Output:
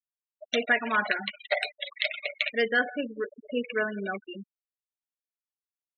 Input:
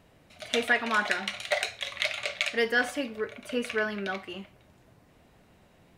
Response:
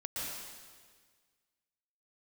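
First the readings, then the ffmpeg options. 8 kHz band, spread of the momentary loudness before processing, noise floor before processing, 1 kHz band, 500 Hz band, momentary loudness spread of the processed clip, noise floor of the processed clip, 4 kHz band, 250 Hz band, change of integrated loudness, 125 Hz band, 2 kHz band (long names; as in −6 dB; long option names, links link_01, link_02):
below −10 dB, 11 LU, −61 dBFS, 0.0 dB, +0.5 dB, 10 LU, below −85 dBFS, −1.5 dB, +0.5 dB, 0.0 dB, can't be measured, +0.5 dB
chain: -filter_complex "[0:a]asplit=2[link_01][link_02];[1:a]atrim=start_sample=2205[link_03];[link_02][link_03]afir=irnorm=-1:irlink=0,volume=-17.5dB[link_04];[link_01][link_04]amix=inputs=2:normalize=0,afftfilt=real='re*gte(hypot(re,im),0.0501)':imag='im*gte(hypot(re,im),0.0501)':win_size=1024:overlap=0.75"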